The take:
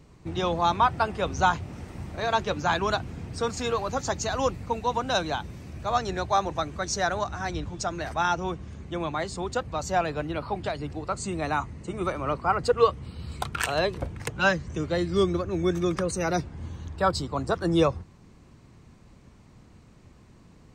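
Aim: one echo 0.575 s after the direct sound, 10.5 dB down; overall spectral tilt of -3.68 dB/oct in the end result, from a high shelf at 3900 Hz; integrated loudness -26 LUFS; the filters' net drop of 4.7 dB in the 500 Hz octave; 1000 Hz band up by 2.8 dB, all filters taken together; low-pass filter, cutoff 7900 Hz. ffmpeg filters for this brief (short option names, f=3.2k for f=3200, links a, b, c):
-af "lowpass=7.9k,equalizer=f=500:t=o:g=-8,equalizer=f=1k:t=o:g=5.5,highshelf=f=3.9k:g=7,aecho=1:1:575:0.299,volume=0.5dB"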